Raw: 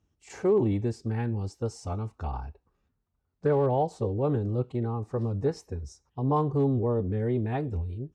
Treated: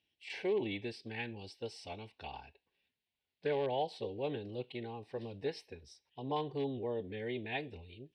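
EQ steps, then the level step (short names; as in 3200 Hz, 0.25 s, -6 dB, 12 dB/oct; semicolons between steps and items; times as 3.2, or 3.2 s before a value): band-pass 3000 Hz, Q 1.2; fixed phaser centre 3000 Hz, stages 4; +10.5 dB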